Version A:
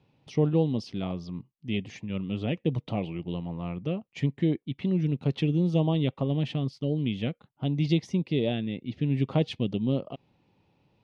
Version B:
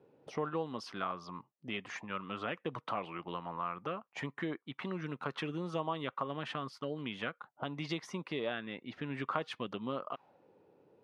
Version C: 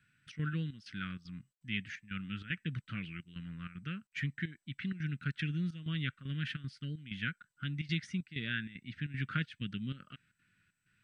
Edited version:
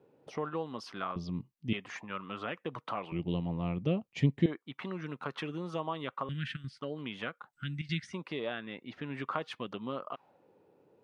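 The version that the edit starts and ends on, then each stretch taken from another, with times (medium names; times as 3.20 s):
B
1.16–1.73 s: from A
3.12–4.46 s: from A
6.29–6.79 s: from C
7.53–8.13 s: from C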